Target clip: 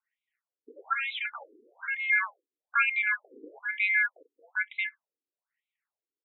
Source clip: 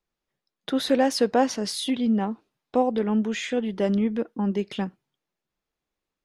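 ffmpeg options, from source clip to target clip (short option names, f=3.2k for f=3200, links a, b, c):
-filter_complex "[0:a]asettb=1/sr,asplit=3[a][b][c];[a]atrim=end=0.934[d];[b]atrim=start=0.93:end=2.1,asetpts=PTS-STARTPTS,afade=t=in:d=0.004:c=qsin,afade=t=out:st=1.166:d=0.004:c=qsin,volume=27dB,asoftclip=hard,volume=-27dB[e];[c]atrim=start=2.096[f];[d][e]acrossfade=d=0.004:c1=hsin:c2=qsin[g];[g][f]acrossfade=d=0.004:c1=qsin:c2=hsin,aeval=exprs='val(0)*sin(2*PI*1900*n/s)':c=same,afftfilt=real='re*between(b*sr/1024,330*pow(2900/330,0.5+0.5*sin(2*PI*1.1*pts/sr))/1.41,330*pow(2900/330,0.5+0.5*sin(2*PI*1.1*pts/sr))*1.41)':imag='im*between(b*sr/1024,330*pow(2900/330,0.5+0.5*sin(2*PI*1.1*pts/sr))/1.41,330*pow(2900/330,0.5+0.5*sin(2*PI*1.1*pts/sr))*1.41)':win_size=1024:overlap=0.75,volume=2dB"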